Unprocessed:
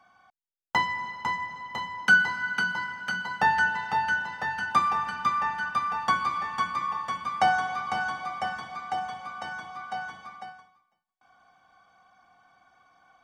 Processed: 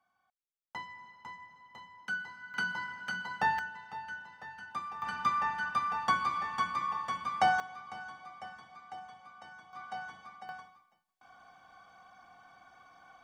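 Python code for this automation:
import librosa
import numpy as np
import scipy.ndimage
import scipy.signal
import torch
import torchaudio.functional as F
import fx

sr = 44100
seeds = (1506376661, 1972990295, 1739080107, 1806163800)

y = fx.gain(x, sr, db=fx.steps((0.0, -17.5), (2.54, -6.5), (3.59, -16.0), (5.02, -4.0), (7.6, -15.0), (9.73, -7.0), (10.49, 3.0)))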